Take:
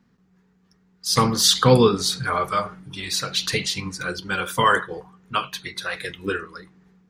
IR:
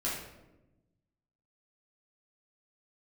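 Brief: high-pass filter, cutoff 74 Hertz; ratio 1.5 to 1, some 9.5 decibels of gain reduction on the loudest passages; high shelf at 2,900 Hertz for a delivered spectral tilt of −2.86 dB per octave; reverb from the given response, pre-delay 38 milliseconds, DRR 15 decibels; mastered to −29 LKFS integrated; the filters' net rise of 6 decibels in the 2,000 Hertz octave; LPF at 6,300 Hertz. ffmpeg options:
-filter_complex "[0:a]highpass=74,lowpass=6300,equalizer=frequency=2000:width_type=o:gain=7,highshelf=frequency=2900:gain=3.5,acompressor=threshold=-37dB:ratio=1.5,asplit=2[link_01][link_02];[1:a]atrim=start_sample=2205,adelay=38[link_03];[link_02][link_03]afir=irnorm=-1:irlink=0,volume=-20.5dB[link_04];[link_01][link_04]amix=inputs=2:normalize=0,volume=-1.5dB"

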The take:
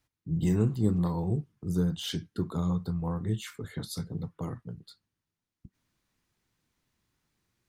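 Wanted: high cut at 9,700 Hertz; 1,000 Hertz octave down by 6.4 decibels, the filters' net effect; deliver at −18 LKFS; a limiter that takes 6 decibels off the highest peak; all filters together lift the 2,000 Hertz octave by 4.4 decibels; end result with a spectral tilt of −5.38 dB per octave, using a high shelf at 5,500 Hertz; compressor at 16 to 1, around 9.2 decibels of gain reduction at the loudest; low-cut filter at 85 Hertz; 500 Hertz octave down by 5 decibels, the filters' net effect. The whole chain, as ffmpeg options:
ffmpeg -i in.wav -af "highpass=85,lowpass=9700,equalizer=frequency=500:width_type=o:gain=-5.5,equalizer=frequency=1000:width_type=o:gain=-8.5,equalizer=frequency=2000:width_type=o:gain=7,highshelf=frequency=5500:gain=9,acompressor=threshold=-31dB:ratio=16,volume=20.5dB,alimiter=limit=-8dB:level=0:latency=1" out.wav

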